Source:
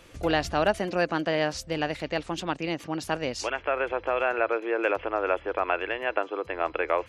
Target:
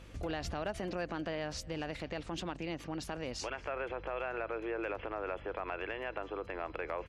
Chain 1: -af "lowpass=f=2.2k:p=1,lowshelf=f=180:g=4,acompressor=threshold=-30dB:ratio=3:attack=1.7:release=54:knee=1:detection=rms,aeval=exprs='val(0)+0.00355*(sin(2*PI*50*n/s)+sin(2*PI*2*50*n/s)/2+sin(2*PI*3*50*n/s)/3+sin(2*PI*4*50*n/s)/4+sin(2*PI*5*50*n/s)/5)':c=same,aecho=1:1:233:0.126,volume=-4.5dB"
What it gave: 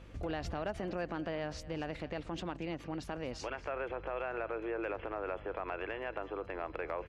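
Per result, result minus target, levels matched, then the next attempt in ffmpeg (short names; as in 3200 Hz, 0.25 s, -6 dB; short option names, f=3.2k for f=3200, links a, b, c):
8000 Hz band -6.5 dB; echo-to-direct +7 dB
-af "lowpass=f=7k:p=1,lowshelf=f=180:g=4,acompressor=threshold=-30dB:ratio=3:attack=1.7:release=54:knee=1:detection=rms,aeval=exprs='val(0)+0.00355*(sin(2*PI*50*n/s)+sin(2*PI*2*50*n/s)/2+sin(2*PI*3*50*n/s)/3+sin(2*PI*4*50*n/s)/4+sin(2*PI*5*50*n/s)/5)':c=same,aecho=1:1:233:0.126,volume=-4.5dB"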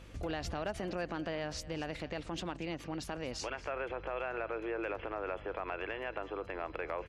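echo-to-direct +7 dB
-af "lowpass=f=7k:p=1,lowshelf=f=180:g=4,acompressor=threshold=-30dB:ratio=3:attack=1.7:release=54:knee=1:detection=rms,aeval=exprs='val(0)+0.00355*(sin(2*PI*50*n/s)+sin(2*PI*2*50*n/s)/2+sin(2*PI*3*50*n/s)/3+sin(2*PI*4*50*n/s)/4+sin(2*PI*5*50*n/s)/5)':c=same,aecho=1:1:233:0.0562,volume=-4.5dB"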